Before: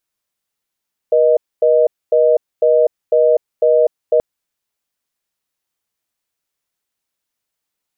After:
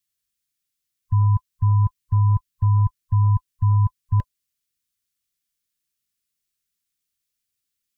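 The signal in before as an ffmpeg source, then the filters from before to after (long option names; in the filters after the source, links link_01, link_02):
-f lavfi -i "aevalsrc='0.266*(sin(2*PI*480*t)+sin(2*PI*620*t))*clip(min(mod(t,0.5),0.25-mod(t,0.5))/0.005,0,1)':duration=3.08:sample_rate=44100"
-af "afftfilt=real='real(if(lt(b,1008),b+24*(1-2*mod(floor(b/24),2)),b),0)':imag='imag(if(lt(b,1008),b+24*(1-2*mod(floor(b/24),2)),b),0)':win_size=2048:overlap=0.75,asuperstop=centerf=790:order=20:qfactor=2,equalizer=frequency=700:width=0.52:gain=-15"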